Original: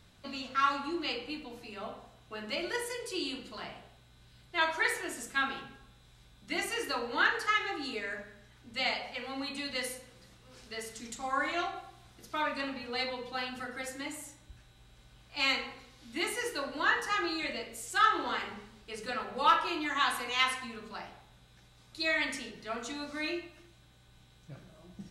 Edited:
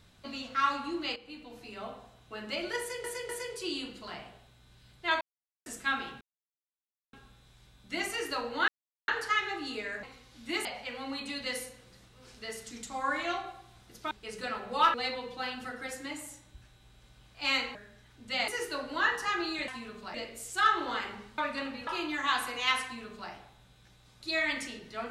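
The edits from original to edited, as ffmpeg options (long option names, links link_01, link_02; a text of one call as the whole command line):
ffmpeg -i in.wav -filter_complex "[0:a]asplit=18[link_01][link_02][link_03][link_04][link_05][link_06][link_07][link_08][link_09][link_10][link_11][link_12][link_13][link_14][link_15][link_16][link_17][link_18];[link_01]atrim=end=1.16,asetpts=PTS-STARTPTS,afade=type=out:start_time=1.156:duration=0.004:curve=hsin:silence=0.211349[link_19];[link_02]atrim=start=1.16:end=3.042,asetpts=PTS-STARTPTS,afade=type=in:duration=0.52:silence=0.211349[link_20];[link_03]atrim=start=2.788:end=3.042[link_21];[link_04]atrim=start=2.788:end=4.71,asetpts=PTS-STARTPTS,afade=type=out:start_time=1.918:duration=0.004:curve=hsin[link_22];[link_05]atrim=start=4.71:end=5.16,asetpts=PTS-STARTPTS,volume=0[link_23];[link_06]atrim=start=5.16:end=5.71,asetpts=PTS-STARTPTS,afade=type=in:duration=0.004:curve=hsin,afade=type=out:start_time=0.546:duration=0.004:curve=hsin,apad=pad_dur=0.92[link_24];[link_07]atrim=start=5.71:end=7.26,asetpts=PTS-STARTPTS,afade=type=in:duration=0.004:curve=hsin,afade=type=out:start_time=1.546:duration=0.004:curve=hsin,apad=pad_dur=0.4[link_25];[link_08]atrim=start=7.26:end=8.212,asetpts=PTS-STARTPTS,afade=type=in:duration=0.004:curve=hsin[link_26];[link_09]atrim=start=15.698:end=16.322[link_27];[link_10]atrim=start=8.938:end=12.402[link_28];[link_11]atrim=start=18.758:end=19.592[link_29];[link_12]atrim=start=12.888:end=15.702[link_30];[link_13]atrim=start=8.208:end=8.942[link_31];[link_14]atrim=start=16.318:end=17.522[link_32];[link_15]atrim=start=20.558:end=21.022[link_33];[link_16]atrim=start=17.518:end=18.762[link_34];[link_17]atrim=start=12.398:end=12.892[link_35];[link_18]atrim=start=19.588[link_36];[link_19][link_20]concat=n=2:v=0:a=1[link_37];[link_37][link_21]acrossfade=duration=0.004:curve1=hsin:curve2=hsin[link_38];[link_22][link_23][link_24][link_25][link_26]concat=n=5:v=0:a=1[link_39];[link_38][link_39]acrossfade=duration=0.004:curve1=hsin:curve2=hsin[link_40];[link_40][link_27]acrossfade=duration=0.004:curve1=hsin:curve2=hsin[link_41];[link_41][link_28]acrossfade=duration=0.004:curve1=hsin:curve2=hsin[link_42];[link_42][link_29]acrossfade=duration=0.004:curve1=hsin:curve2=hsin[link_43];[link_43][link_30]acrossfade=duration=0.004:curve1=hsin:curve2=hsin[link_44];[link_44][link_31]acrossfade=duration=0.004:curve1=hsin:curve2=hsin[link_45];[link_45][link_32]acrossfade=duration=0.004:curve1=hsin:curve2=hsin[link_46];[link_46][link_33]acrossfade=duration=0.004:curve1=hsin:curve2=hsin[link_47];[link_47][link_34]acrossfade=duration=0.004:curve1=hsin:curve2=hsin[link_48];[link_48][link_35]acrossfade=duration=0.004:curve1=hsin:curve2=hsin[link_49];[link_49][link_36]acrossfade=duration=0.004:curve1=hsin:curve2=hsin" out.wav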